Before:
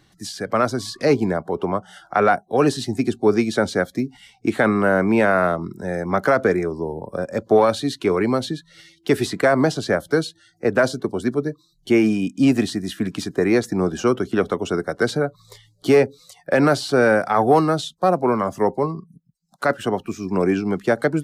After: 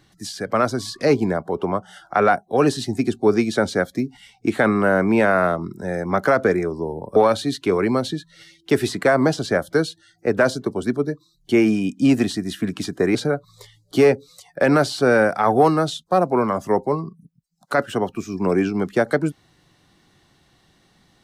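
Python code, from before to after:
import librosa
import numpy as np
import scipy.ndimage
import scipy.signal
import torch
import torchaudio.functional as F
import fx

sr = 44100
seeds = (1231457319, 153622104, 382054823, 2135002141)

y = fx.edit(x, sr, fx.cut(start_s=7.16, length_s=0.38),
    fx.cut(start_s=13.53, length_s=1.53), tone=tone)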